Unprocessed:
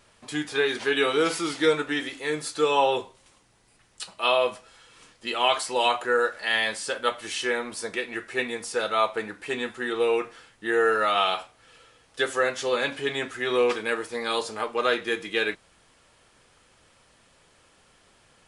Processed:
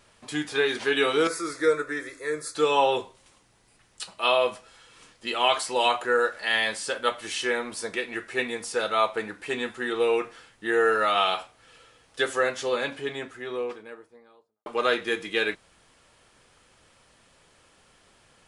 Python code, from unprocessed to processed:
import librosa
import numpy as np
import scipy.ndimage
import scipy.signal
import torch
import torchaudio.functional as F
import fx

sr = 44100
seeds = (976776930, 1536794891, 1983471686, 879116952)

y = fx.fixed_phaser(x, sr, hz=810.0, stages=6, at=(1.27, 2.55))
y = fx.studio_fade_out(y, sr, start_s=12.21, length_s=2.45)